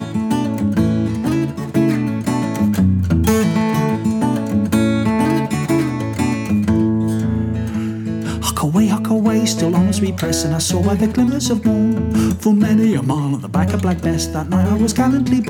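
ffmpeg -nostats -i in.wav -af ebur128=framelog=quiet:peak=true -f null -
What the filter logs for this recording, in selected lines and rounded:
Integrated loudness:
  I:         -17.0 LUFS
  Threshold: -27.0 LUFS
Loudness range:
  LRA:         1.9 LU
  Threshold: -36.9 LUFS
  LRA low:   -18.0 LUFS
  LRA high:  -16.1 LUFS
True peak:
  Peak:       -2.6 dBFS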